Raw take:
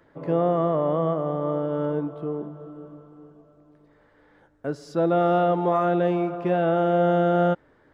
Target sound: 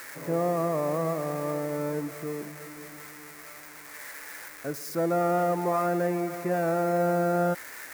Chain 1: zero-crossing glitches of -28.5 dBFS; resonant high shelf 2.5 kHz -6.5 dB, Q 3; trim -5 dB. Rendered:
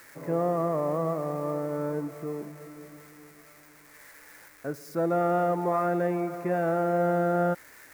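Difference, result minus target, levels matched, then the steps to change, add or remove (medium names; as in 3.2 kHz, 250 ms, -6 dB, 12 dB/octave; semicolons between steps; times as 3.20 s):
zero-crossing glitches: distortion -9 dB
change: zero-crossing glitches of -19 dBFS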